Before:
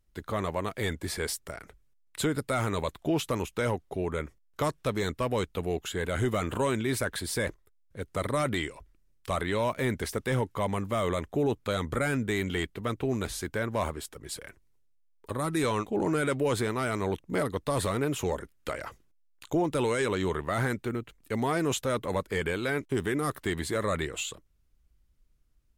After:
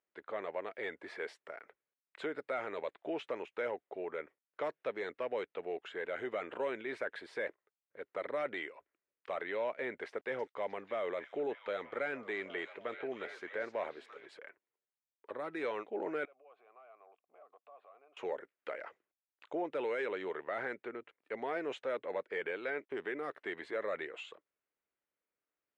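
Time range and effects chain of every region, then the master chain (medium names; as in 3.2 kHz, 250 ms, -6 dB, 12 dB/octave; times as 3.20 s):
10.08–14.26 s: small samples zeroed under -51.5 dBFS + repeats whose band climbs or falls 309 ms, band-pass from 5.6 kHz, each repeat -0.7 oct, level -5 dB
16.25–18.17 s: peaking EQ 2 kHz +5 dB 0.24 oct + compression 16:1, threshold -36 dBFS + vowel filter a
whole clip: Chebyshev band-pass 470–2200 Hz, order 2; dynamic bell 1.1 kHz, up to -7 dB, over -47 dBFS, Q 2.5; trim -5 dB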